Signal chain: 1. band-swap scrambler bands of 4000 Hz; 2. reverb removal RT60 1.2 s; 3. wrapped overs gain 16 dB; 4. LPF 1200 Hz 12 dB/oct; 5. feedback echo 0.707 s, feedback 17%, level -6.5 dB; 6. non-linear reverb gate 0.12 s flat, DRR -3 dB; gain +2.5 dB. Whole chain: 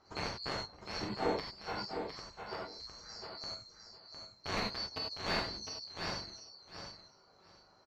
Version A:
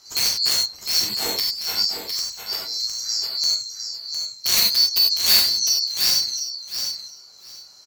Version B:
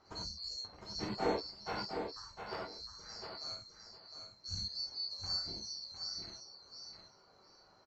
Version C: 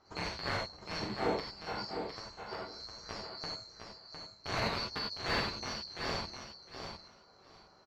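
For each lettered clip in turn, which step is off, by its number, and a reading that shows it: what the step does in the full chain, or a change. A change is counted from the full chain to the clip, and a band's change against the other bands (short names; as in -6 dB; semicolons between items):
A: 4, 8 kHz band +24.5 dB; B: 3, distortion -6 dB; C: 2, crest factor change -2.0 dB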